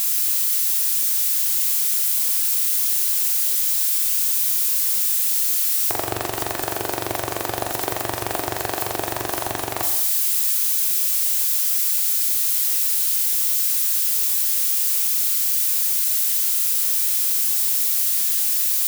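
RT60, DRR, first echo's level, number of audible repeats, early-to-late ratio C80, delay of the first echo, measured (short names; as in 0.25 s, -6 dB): 0.90 s, 4.0 dB, none, none, 9.5 dB, none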